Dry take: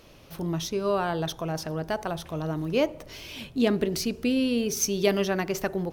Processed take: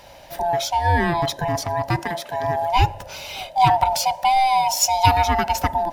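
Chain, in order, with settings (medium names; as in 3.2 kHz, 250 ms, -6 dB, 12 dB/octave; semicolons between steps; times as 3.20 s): split-band scrambler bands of 500 Hz; 1.99–2.44 s: high-pass 380 Hz 6 dB/octave; trim +7.5 dB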